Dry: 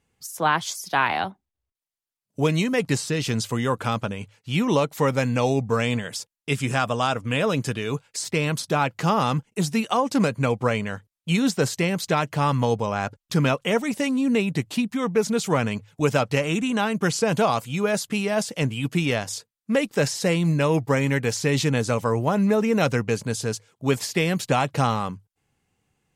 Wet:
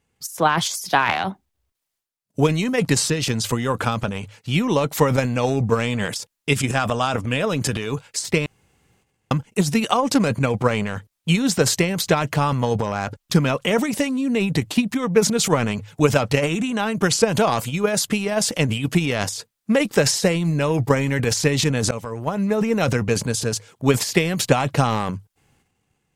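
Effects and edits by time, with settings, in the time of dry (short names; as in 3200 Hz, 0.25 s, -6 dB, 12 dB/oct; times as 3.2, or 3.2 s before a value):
8.46–9.31 room tone
21.91–22.61 fade in linear, from -21 dB
whole clip: transient shaper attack +8 dB, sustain +12 dB; gain -1 dB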